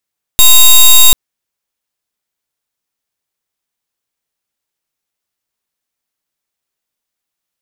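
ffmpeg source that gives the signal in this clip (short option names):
-f lavfi -i "aevalsrc='0.708*(2*lt(mod(3760*t,1),0.13)-1)':d=0.74:s=44100"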